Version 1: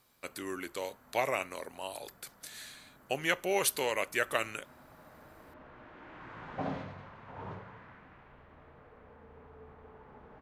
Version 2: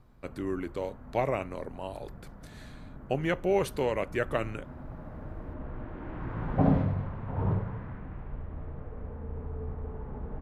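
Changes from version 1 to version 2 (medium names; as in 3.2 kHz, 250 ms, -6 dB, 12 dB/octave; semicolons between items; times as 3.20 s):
background +5.0 dB; master: add tilt EQ -4.5 dB/octave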